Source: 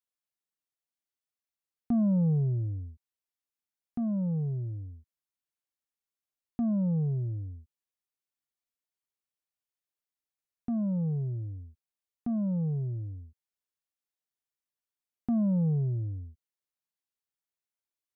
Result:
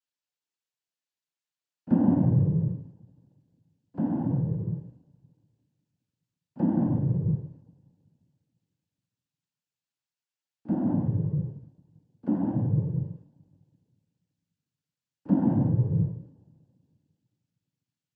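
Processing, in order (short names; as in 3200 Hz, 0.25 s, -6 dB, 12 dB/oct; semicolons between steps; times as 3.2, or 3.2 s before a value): reverse echo 36 ms -17.5 dB; in parallel at -6.5 dB: backlash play -43 dBFS; on the sum: two-slope reverb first 0.27 s, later 2.6 s, from -18 dB, DRR 14.5 dB; noise vocoder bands 8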